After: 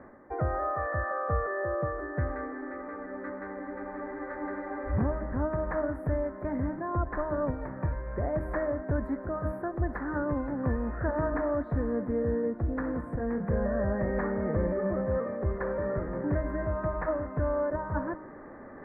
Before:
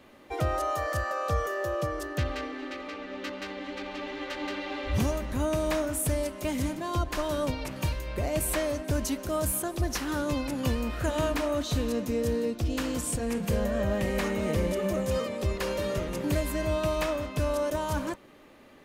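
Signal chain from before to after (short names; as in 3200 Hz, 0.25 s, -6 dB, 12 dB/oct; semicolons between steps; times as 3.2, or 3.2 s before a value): elliptic low-pass 1800 Hz, stop band 40 dB; de-hum 310.2 Hz, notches 32; reverse; upward compressor, threshold -36 dBFS; reverse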